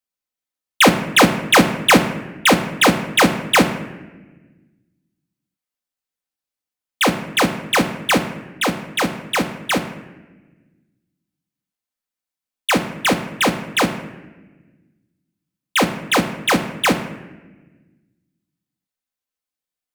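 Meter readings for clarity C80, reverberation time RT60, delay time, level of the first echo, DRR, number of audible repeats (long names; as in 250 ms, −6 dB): 12.0 dB, 1.2 s, no echo audible, no echo audible, 4.0 dB, no echo audible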